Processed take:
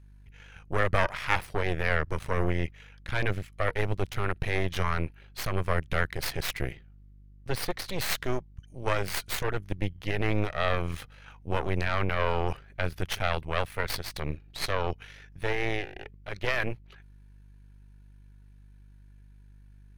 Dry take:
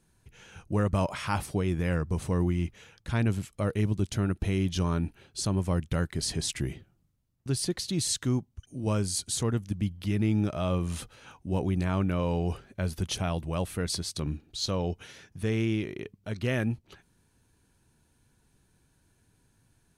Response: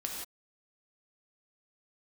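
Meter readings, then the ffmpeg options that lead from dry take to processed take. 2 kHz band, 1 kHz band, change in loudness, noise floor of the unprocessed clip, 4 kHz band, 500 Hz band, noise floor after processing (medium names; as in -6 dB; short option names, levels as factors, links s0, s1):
+9.0 dB, +5.5 dB, -1.0 dB, -69 dBFS, -0.5 dB, +1.5 dB, -53 dBFS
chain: -af "aeval=exprs='val(0)+0.00501*(sin(2*PI*50*n/s)+sin(2*PI*2*50*n/s)/2+sin(2*PI*3*50*n/s)/3+sin(2*PI*4*50*n/s)/4+sin(2*PI*5*50*n/s)/5)':c=same,aeval=exprs='0.178*(cos(1*acos(clip(val(0)/0.178,-1,1)))-cos(1*PI/2))+0.0891*(cos(2*acos(clip(val(0)/0.178,-1,1)))-cos(2*PI/2))+0.0251*(cos(3*acos(clip(val(0)/0.178,-1,1)))-cos(3*PI/2))+0.0178*(cos(6*acos(clip(val(0)/0.178,-1,1)))-cos(6*PI/2))+0.00316*(cos(7*acos(clip(val(0)/0.178,-1,1)))-cos(7*PI/2))':c=same,equalizer=f=250:t=o:w=1:g=-9,equalizer=f=2000:t=o:w=1:g=7,equalizer=f=8000:t=o:w=1:g=-8,volume=1.33"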